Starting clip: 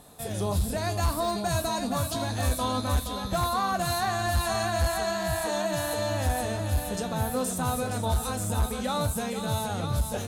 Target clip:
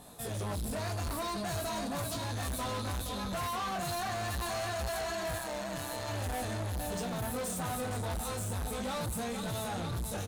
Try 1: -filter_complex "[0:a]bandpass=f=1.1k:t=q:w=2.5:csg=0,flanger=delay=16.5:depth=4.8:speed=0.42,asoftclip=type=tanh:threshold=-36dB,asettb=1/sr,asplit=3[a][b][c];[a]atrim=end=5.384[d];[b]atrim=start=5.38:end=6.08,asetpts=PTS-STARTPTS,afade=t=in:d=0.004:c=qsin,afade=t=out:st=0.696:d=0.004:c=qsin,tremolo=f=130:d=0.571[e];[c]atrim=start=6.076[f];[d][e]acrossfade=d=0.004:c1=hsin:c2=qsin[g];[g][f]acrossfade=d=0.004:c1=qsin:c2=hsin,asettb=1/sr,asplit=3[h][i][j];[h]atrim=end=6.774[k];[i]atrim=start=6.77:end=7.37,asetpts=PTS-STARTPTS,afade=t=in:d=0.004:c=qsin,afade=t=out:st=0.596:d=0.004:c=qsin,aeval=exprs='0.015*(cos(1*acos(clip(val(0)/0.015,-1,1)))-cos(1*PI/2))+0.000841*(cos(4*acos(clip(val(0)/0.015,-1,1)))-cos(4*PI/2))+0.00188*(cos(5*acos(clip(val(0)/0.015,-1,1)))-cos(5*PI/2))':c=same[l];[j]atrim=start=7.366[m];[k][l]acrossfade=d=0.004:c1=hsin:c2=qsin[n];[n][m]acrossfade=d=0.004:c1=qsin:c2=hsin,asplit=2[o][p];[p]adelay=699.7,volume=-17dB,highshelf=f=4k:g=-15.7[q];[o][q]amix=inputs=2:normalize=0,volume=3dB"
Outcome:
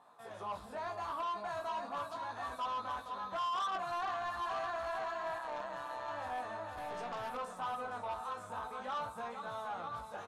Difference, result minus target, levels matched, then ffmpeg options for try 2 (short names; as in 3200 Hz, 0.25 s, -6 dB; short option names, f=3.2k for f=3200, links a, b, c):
1000 Hz band +5.5 dB
-filter_complex "[0:a]flanger=delay=16.5:depth=4.8:speed=0.42,asoftclip=type=tanh:threshold=-36dB,asettb=1/sr,asplit=3[a][b][c];[a]atrim=end=5.384[d];[b]atrim=start=5.38:end=6.08,asetpts=PTS-STARTPTS,afade=t=in:d=0.004:c=qsin,afade=t=out:st=0.696:d=0.004:c=qsin,tremolo=f=130:d=0.571[e];[c]atrim=start=6.076[f];[d][e]acrossfade=d=0.004:c1=hsin:c2=qsin[g];[g][f]acrossfade=d=0.004:c1=qsin:c2=hsin,asettb=1/sr,asplit=3[h][i][j];[h]atrim=end=6.774[k];[i]atrim=start=6.77:end=7.37,asetpts=PTS-STARTPTS,afade=t=in:d=0.004:c=qsin,afade=t=out:st=0.596:d=0.004:c=qsin,aeval=exprs='0.015*(cos(1*acos(clip(val(0)/0.015,-1,1)))-cos(1*PI/2))+0.000841*(cos(4*acos(clip(val(0)/0.015,-1,1)))-cos(4*PI/2))+0.00188*(cos(5*acos(clip(val(0)/0.015,-1,1)))-cos(5*PI/2))':c=same[l];[j]atrim=start=7.366[m];[k][l]acrossfade=d=0.004:c1=hsin:c2=qsin[n];[n][m]acrossfade=d=0.004:c1=qsin:c2=hsin,asplit=2[o][p];[p]adelay=699.7,volume=-17dB,highshelf=f=4k:g=-15.7[q];[o][q]amix=inputs=2:normalize=0,volume=3dB"